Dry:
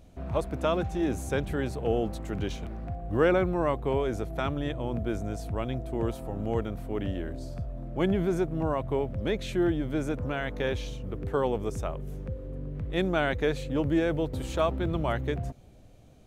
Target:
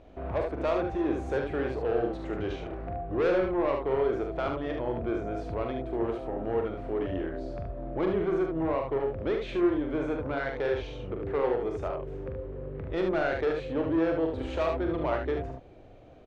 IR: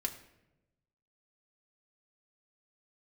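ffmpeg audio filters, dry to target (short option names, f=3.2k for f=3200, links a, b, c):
-filter_complex "[0:a]lowpass=2.4k,lowshelf=f=270:t=q:w=1.5:g=-7.5,asplit=2[a][b];[b]acompressor=threshold=-40dB:ratio=6,volume=0dB[c];[a][c]amix=inputs=2:normalize=0,asoftclip=type=tanh:threshold=-21.5dB,aecho=1:1:43|74:0.501|0.562,volume=-1dB"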